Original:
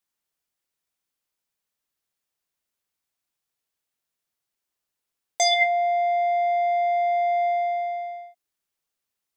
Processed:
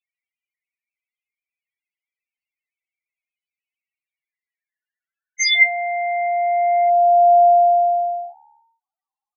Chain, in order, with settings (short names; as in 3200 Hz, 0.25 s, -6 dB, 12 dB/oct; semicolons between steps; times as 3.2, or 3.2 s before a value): high-pass sweep 2100 Hz -> 780 Hz, 4.11–7.32; frequency-shifting echo 0.153 s, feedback 50%, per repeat +72 Hz, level -23.5 dB; loudest bins only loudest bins 4; gain +5.5 dB